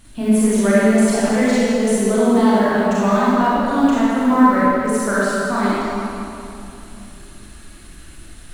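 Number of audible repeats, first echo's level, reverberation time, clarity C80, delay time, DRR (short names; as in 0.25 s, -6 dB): none, none, 2.9 s, -4.0 dB, none, -10.0 dB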